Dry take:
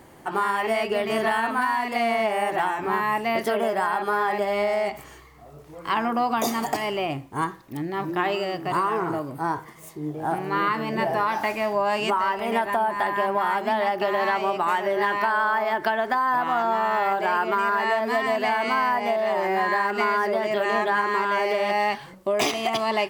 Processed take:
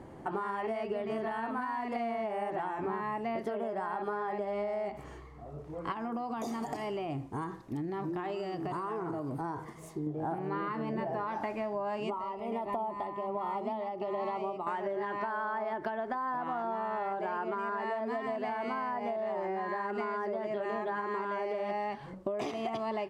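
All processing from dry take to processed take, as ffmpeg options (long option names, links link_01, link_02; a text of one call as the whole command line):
ffmpeg -i in.wav -filter_complex "[0:a]asettb=1/sr,asplit=3[link_01][link_02][link_03];[link_01]atrim=end=5.924[link_04];[link_02]atrim=start=5.92:end=10.07,asetpts=PTS-STARTPTS,afade=type=in:duration=0.004:curve=qsin,afade=type=out:start_time=4.146:duration=0.004:curve=qsin,bass=frequency=250:gain=-1,treble=frequency=4000:gain=7,bandreject=frequency=560:width=12,acompressor=threshold=-32dB:ratio=2.5:attack=3.2:release=140:knee=1:detection=peak[link_05];[link_03]atrim=start=10.066[link_06];[link_04][link_05]acrossfade=duration=0.004:curve1=hsin:curve2=qsin[link_07];[link_07][link_06]acrossfade=duration=0.004:curve1=qsin:curve2=hsin,asettb=1/sr,asplit=3[link_08][link_09][link_10];[link_08]atrim=end=12.034[link_11];[link_09]atrim=start=12.03:end=14.67,asetpts=PTS-STARTPTS,afade=type=in:duration=0.004:curve=qsin,afade=type=out:start_time=2.636:duration=0.004:curve=qsin,asuperstop=centerf=1600:order=4:qfactor=2.6,tremolo=f=1.3:d=0.67[link_12];[link_10]atrim=start=14.666[link_13];[link_11][link_12]acrossfade=duration=0.004:curve1=hsin:curve2=qsin[link_14];[link_14][link_13]acrossfade=duration=0.004:curve1=qsin:curve2=hsin,lowpass=9400,tiltshelf=frequency=1400:gain=7.5,acompressor=threshold=-27dB:ratio=6,volume=-5dB" out.wav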